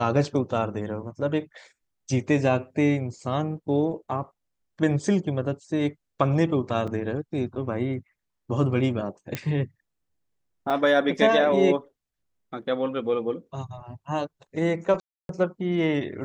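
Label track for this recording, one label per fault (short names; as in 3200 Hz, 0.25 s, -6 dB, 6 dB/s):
6.870000	6.880000	gap 5.5 ms
9.350000	9.350000	pop -13 dBFS
10.700000	10.700000	gap 4 ms
15.000000	15.290000	gap 0.292 s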